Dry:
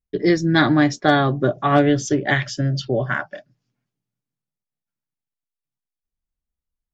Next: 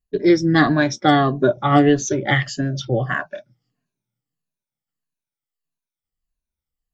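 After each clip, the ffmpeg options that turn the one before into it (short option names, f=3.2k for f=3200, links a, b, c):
-af "afftfilt=real='re*pow(10,13/40*sin(2*PI*(1.5*log(max(b,1)*sr/1024/100)/log(2)-(-1.6)*(pts-256)/sr)))':imag='im*pow(10,13/40*sin(2*PI*(1.5*log(max(b,1)*sr/1024/100)/log(2)-(-1.6)*(pts-256)/sr)))':win_size=1024:overlap=0.75,volume=-1dB"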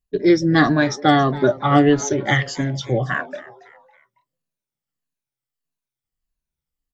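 -filter_complex "[0:a]asplit=4[a][b][c][d];[b]adelay=277,afreqshift=130,volume=-19dB[e];[c]adelay=554,afreqshift=260,volume=-26.1dB[f];[d]adelay=831,afreqshift=390,volume=-33.3dB[g];[a][e][f][g]amix=inputs=4:normalize=0"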